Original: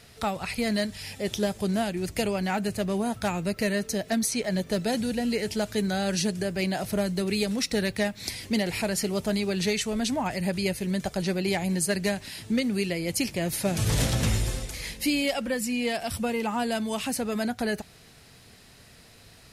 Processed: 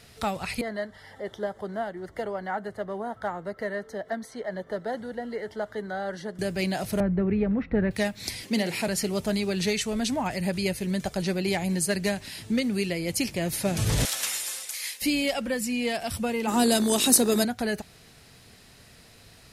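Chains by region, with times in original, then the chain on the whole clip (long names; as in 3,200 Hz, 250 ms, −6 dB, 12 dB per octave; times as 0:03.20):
0:00.61–0:06.39: Butterworth band-reject 2,500 Hz, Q 2.8 + upward compression, threshold −33 dBFS + three-way crossover with the lows and the highs turned down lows −13 dB, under 410 Hz, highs −22 dB, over 2,300 Hz
0:07.00–0:07.91: low-pass filter 1,800 Hz 24 dB per octave + low-shelf EQ 150 Hz +10.5 dB
0:08.43–0:08.88: high-pass filter 140 Hz 24 dB per octave + double-tracking delay 47 ms −13.5 dB
0:14.05–0:15.02: high-pass filter 1,100 Hz + high-shelf EQ 7,700 Hz +11.5 dB
0:16.47–0:17.43: bass and treble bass −14 dB, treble +15 dB + hum with harmonics 50 Hz, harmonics 38, −46 dBFS −1 dB per octave + hollow resonant body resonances 240/350/3,800 Hz, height 15 dB, ringing for 35 ms
whole clip: no processing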